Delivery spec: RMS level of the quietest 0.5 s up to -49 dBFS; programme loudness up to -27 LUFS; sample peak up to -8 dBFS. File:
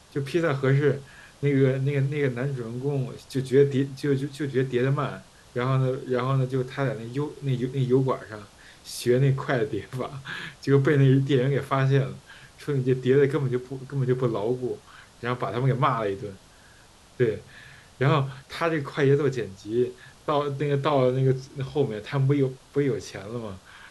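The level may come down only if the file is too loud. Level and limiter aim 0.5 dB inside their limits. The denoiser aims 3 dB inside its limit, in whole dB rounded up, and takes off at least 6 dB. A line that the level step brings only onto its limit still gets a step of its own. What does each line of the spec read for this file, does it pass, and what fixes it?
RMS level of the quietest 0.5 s -53 dBFS: OK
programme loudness -25.5 LUFS: fail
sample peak -7.5 dBFS: fail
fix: gain -2 dB

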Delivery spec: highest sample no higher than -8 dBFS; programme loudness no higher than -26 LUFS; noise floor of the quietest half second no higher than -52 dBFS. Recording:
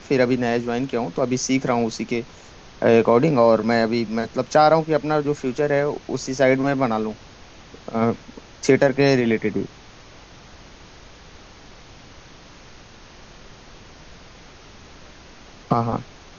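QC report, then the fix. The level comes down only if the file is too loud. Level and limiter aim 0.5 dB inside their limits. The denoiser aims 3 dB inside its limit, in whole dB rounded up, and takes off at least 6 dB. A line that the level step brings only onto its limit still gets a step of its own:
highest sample -3.0 dBFS: fail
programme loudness -20.5 LUFS: fail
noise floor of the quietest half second -45 dBFS: fail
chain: denoiser 6 dB, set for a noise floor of -45 dBFS; gain -6 dB

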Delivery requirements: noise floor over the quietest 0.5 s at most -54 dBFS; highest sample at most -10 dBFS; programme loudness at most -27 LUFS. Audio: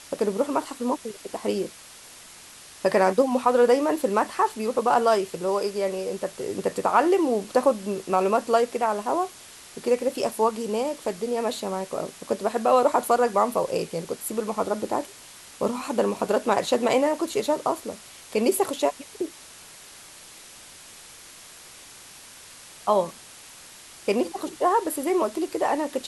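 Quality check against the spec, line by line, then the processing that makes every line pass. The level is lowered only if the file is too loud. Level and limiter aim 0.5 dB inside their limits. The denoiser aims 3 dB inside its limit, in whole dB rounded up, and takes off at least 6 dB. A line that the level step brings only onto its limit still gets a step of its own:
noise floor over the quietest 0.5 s -46 dBFS: fail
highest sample -6.5 dBFS: fail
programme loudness -25.0 LUFS: fail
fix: denoiser 9 dB, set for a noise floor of -46 dBFS; gain -2.5 dB; limiter -10.5 dBFS

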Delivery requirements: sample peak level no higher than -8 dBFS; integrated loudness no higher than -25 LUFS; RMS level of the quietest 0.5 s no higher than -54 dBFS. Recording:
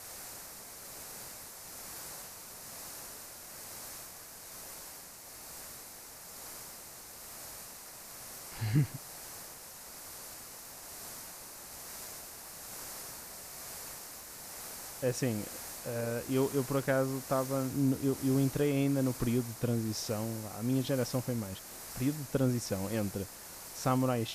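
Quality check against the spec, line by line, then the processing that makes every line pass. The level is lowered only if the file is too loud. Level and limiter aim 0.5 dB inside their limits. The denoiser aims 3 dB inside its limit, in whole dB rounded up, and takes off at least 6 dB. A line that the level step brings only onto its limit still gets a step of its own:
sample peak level -16.5 dBFS: OK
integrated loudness -36.5 LUFS: OK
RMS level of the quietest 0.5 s -49 dBFS: fail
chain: denoiser 8 dB, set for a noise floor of -49 dBFS

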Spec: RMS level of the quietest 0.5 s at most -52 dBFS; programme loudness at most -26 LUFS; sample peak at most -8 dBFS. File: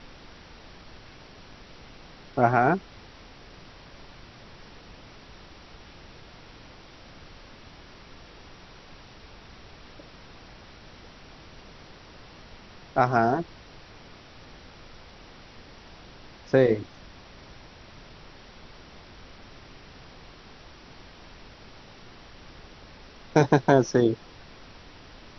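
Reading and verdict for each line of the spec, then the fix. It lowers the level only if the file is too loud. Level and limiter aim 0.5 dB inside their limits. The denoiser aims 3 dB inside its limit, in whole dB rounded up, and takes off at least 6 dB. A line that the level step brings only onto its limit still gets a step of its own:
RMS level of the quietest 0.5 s -48 dBFS: fail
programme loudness -23.5 LUFS: fail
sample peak -4.5 dBFS: fail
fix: denoiser 6 dB, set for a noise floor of -48 dBFS; gain -3 dB; limiter -8.5 dBFS

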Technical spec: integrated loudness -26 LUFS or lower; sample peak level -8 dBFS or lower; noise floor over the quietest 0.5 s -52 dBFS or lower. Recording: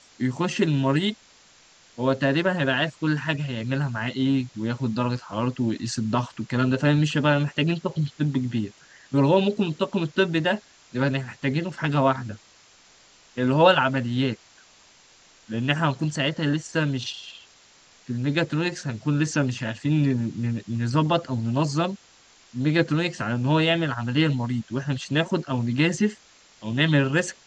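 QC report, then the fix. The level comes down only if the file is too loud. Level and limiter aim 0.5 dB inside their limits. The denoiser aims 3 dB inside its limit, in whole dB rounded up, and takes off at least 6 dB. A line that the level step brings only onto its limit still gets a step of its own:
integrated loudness -24.5 LUFS: fail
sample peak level -5.5 dBFS: fail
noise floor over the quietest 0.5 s -55 dBFS: OK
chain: gain -2 dB; limiter -8.5 dBFS

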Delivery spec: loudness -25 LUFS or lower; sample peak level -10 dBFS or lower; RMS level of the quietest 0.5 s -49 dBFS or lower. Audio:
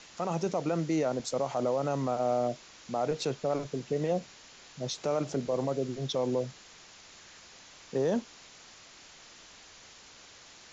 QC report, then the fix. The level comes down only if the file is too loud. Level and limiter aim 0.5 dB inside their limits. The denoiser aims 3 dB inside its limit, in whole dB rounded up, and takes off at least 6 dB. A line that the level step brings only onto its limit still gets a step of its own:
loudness -31.5 LUFS: OK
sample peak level -18.5 dBFS: OK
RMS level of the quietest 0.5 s -53 dBFS: OK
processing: none

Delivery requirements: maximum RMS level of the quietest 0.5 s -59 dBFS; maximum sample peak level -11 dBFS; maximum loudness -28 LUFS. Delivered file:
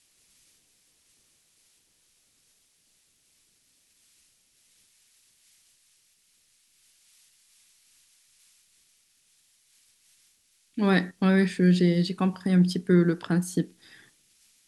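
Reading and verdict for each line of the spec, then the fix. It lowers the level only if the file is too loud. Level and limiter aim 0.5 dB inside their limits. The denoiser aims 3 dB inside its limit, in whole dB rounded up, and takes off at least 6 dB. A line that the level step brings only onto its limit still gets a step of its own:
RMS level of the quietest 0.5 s -67 dBFS: OK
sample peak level -9.0 dBFS: fail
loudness -24.0 LUFS: fail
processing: gain -4.5 dB

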